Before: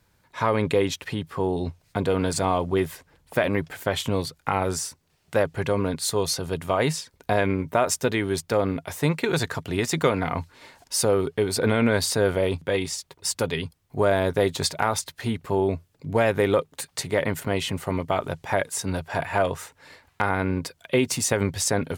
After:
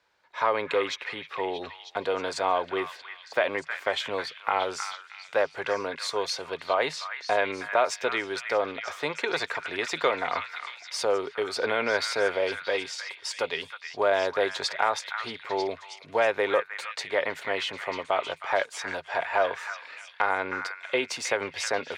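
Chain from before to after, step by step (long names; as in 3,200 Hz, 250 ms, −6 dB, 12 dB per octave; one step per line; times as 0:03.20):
three-way crossover with the lows and the highs turned down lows −24 dB, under 420 Hz, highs −22 dB, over 5,500 Hz
echo through a band-pass that steps 315 ms, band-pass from 1,700 Hz, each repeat 0.7 octaves, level −4.5 dB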